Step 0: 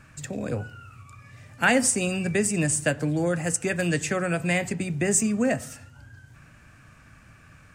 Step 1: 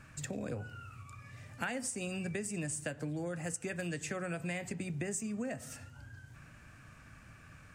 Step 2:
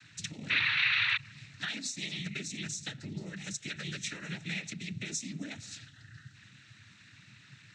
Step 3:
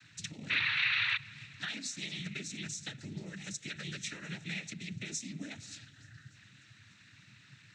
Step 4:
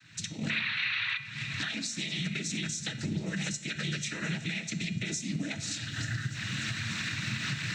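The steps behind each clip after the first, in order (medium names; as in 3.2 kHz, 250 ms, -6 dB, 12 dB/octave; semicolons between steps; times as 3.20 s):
compression 6:1, threshold -32 dBFS, peak gain reduction 15.5 dB; trim -3.5 dB
painted sound noise, 0.49–1.17 s, 1.1–2.7 kHz -31 dBFS; noise-vocoded speech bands 12; ten-band graphic EQ 500 Hz -12 dB, 1 kHz -11 dB, 2 kHz +4 dB, 4 kHz +12 dB
thinning echo 293 ms, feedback 70%, high-pass 160 Hz, level -24 dB; trim -2.5 dB
recorder AGC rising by 56 dB/s; feedback comb 220 Hz, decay 0.56 s, harmonics odd, mix 70%; simulated room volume 2400 m³, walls furnished, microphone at 0.63 m; trim +8.5 dB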